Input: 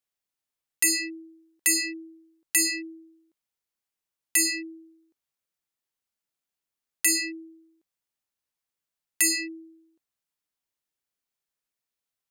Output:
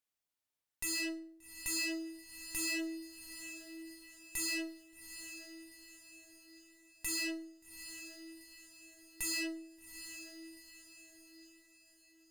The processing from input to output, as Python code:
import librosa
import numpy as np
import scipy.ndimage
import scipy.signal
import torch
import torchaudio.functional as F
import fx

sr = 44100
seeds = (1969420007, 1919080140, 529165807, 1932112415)

y = fx.tube_stage(x, sr, drive_db=37.0, bias=0.75)
y = fx.echo_diffused(y, sr, ms=784, feedback_pct=45, wet_db=-10.0)
y = fx.rev_fdn(y, sr, rt60_s=0.48, lf_ratio=1.55, hf_ratio=0.8, size_ms=20.0, drr_db=9.0)
y = y * 10.0 ** (1.0 / 20.0)